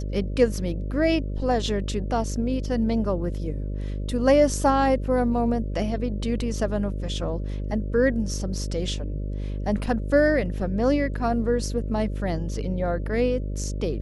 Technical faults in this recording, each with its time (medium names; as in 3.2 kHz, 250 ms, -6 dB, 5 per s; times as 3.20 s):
buzz 50 Hz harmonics 12 -29 dBFS